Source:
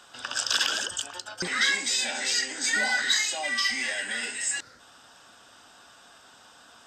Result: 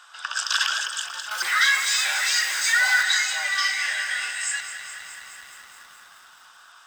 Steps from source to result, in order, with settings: 1.31–3.03 zero-crossing step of -28.5 dBFS; resonant high-pass 1200 Hz, resonance Q 2; lo-fi delay 0.211 s, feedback 80%, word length 8-bit, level -11 dB

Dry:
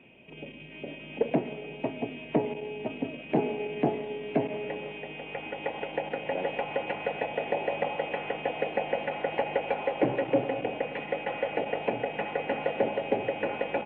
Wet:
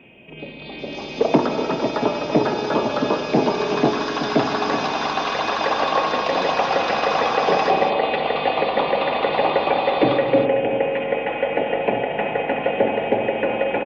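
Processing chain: on a send: echo 0.379 s -9.5 dB; on the sum: spring tank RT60 3.9 s, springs 44 ms, chirp 45 ms, DRR 6.5 dB; echoes that change speed 0.393 s, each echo +6 st, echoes 2; gain +7.5 dB

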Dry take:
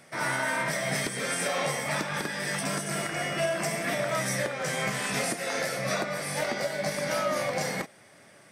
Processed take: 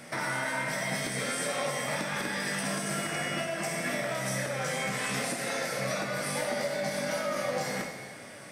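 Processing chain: compressor 6:1, threshold -38 dBFS, peak gain reduction 13.5 dB; non-linear reverb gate 0.45 s falling, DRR 1.5 dB; gain +6 dB

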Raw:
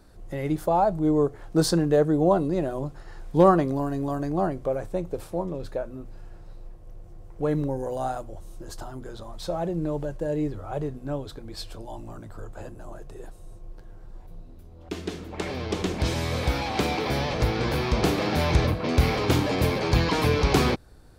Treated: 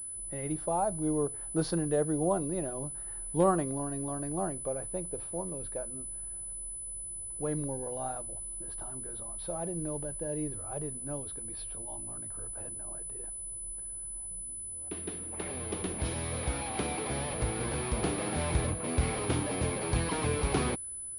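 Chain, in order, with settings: low-pass opened by the level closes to 2800 Hz, open at -21 dBFS; pulse-width modulation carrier 10000 Hz; gain -8.5 dB

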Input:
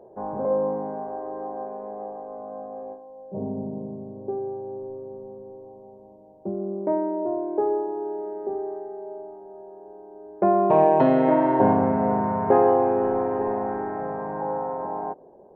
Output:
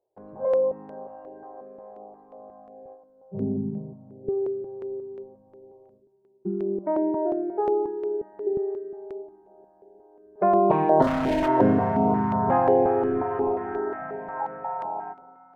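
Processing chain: spectral noise reduction 14 dB; gate with hold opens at -52 dBFS; in parallel at -1.5 dB: compressor, threshold -29 dBFS, peak gain reduction 15 dB; 7.42–8.23 on the sum: notch comb 150 Hz; 11.02–11.48 hard clip -19.5 dBFS, distortion -14 dB; on a send at -13.5 dB: reverb RT60 5.2 s, pre-delay 5 ms; on the sum: stepped notch 5.6 Hz 200–2500 Hz

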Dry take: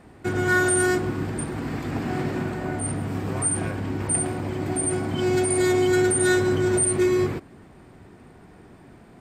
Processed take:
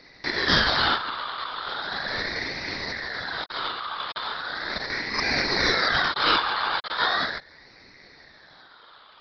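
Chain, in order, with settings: switching dead time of 0.14 ms; resonant high shelf 1600 Hz +14 dB, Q 3; LPC vocoder at 8 kHz whisper; ring modulator with a swept carrier 1600 Hz, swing 25%, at 0.38 Hz; gain -3.5 dB

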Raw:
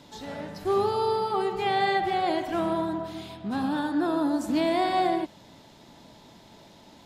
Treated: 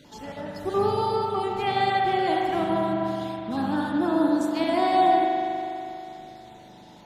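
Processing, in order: random spectral dropouts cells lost 21%; spring tank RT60 3 s, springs 40 ms, chirp 35 ms, DRR 0.5 dB

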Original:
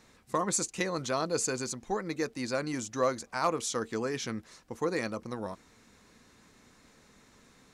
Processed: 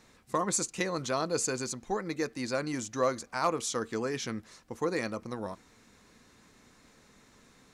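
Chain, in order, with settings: on a send: passive tone stack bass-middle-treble 5-5-5 + reverb RT60 0.50 s, pre-delay 3 ms, DRR 21.5 dB

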